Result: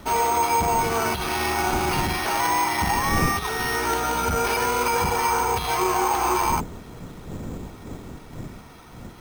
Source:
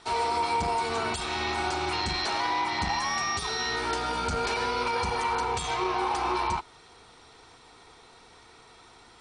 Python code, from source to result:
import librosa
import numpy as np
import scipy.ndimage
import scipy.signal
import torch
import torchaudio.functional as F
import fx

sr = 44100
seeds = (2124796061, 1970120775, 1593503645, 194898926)

y = fx.dmg_wind(x, sr, seeds[0], corner_hz=250.0, level_db=-41.0)
y = np.repeat(scipy.signal.resample_poly(y, 1, 6), 6)[:len(y)]
y = F.gain(torch.from_numpy(y), 6.0).numpy()